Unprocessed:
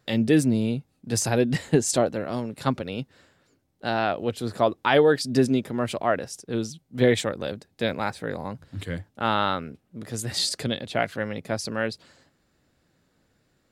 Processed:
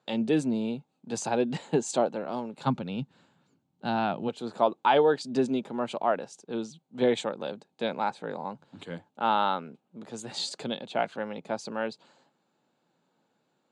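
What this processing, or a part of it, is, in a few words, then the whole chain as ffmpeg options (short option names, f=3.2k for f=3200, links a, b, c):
television speaker: -filter_complex "[0:a]asplit=3[a][b][c];[a]afade=t=out:st=2.65:d=0.02[d];[b]asubboost=boost=8:cutoff=180,afade=t=in:st=2.65:d=0.02,afade=t=out:st=4.27:d=0.02[e];[c]afade=t=in:st=4.27:d=0.02[f];[d][e][f]amix=inputs=3:normalize=0,highpass=f=170:w=0.5412,highpass=f=170:w=1.3066,equalizer=f=290:t=q:w=4:g=-3,equalizer=f=870:t=q:w=4:g=9,equalizer=f=1.9k:t=q:w=4:g=-9,equalizer=f=5.3k:t=q:w=4:g=-10,lowpass=f=7.2k:w=0.5412,lowpass=f=7.2k:w=1.3066,volume=-4dB"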